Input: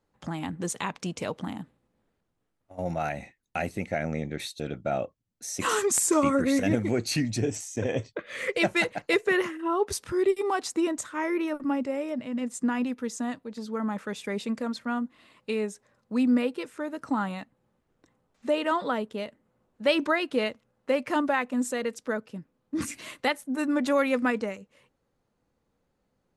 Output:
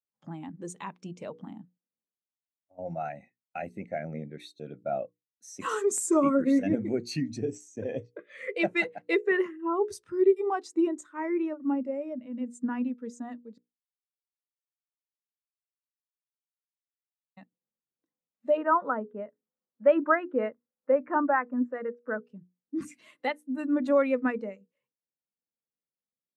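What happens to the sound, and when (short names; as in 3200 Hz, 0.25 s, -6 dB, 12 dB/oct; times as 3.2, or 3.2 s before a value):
13.58–17.37 mute
18.57–22.21 synth low-pass 1500 Hz, resonance Q 1.7
whole clip: HPF 120 Hz; notches 60/120/180/240/300/360/420/480 Hz; spectral expander 1.5:1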